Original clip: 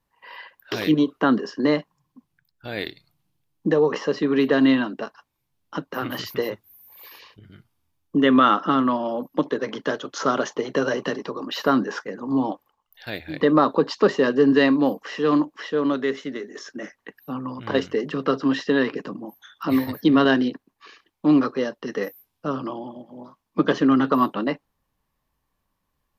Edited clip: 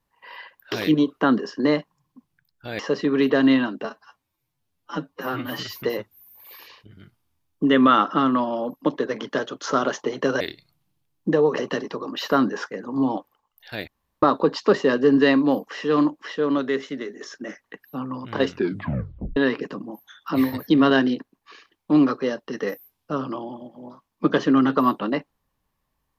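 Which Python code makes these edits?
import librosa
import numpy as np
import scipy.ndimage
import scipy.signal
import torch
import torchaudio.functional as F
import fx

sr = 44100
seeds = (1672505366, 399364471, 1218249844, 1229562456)

y = fx.edit(x, sr, fx.move(start_s=2.79, length_s=1.18, to_s=10.93),
    fx.stretch_span(start_s=5.03, length_s=1.31, factor=1.5),
    fx.room_tone_fill(start_s=13.22, length_s=0.35),
    fx.tape_stop(start_s=17.84, length_s=0.87), tone=tone)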